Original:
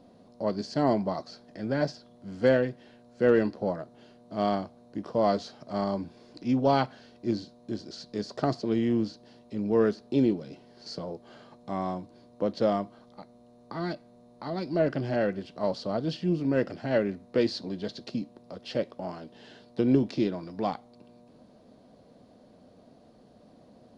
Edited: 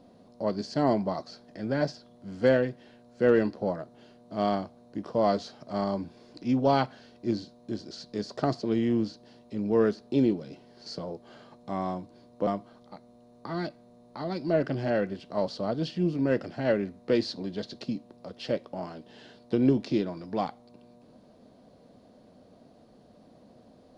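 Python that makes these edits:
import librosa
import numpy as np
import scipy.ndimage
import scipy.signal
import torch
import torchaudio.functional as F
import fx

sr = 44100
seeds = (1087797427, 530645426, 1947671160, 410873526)

y = fx.edit(x, sr, fx.cut(start_s=12.47, length_s=0.26), tone=tone)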